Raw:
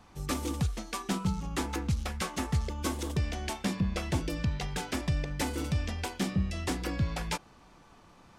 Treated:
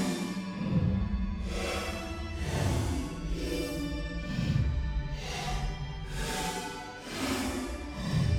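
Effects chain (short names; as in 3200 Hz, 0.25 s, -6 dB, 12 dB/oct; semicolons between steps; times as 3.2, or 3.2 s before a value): hard clip -24.5 dBFS, distortion -17 dB; Paulstretch 5.8×, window 0.10 s, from 3.68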